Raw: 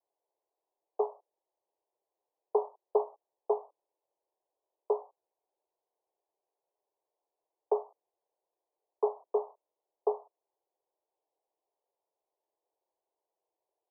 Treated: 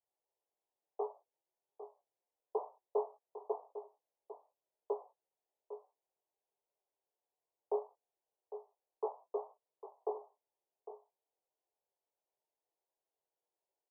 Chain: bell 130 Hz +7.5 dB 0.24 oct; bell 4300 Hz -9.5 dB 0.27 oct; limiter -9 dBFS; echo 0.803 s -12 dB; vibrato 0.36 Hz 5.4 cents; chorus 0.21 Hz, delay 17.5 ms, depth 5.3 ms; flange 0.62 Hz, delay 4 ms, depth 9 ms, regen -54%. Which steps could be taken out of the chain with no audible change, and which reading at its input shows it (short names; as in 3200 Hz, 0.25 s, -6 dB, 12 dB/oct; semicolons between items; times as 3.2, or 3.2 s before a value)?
bell 130 Hz: input band starts at 340 Hz; bell 4300 Hz: input band ends at 1100 Hz; limiter -9 dBFS: input peak -14.0 dBFS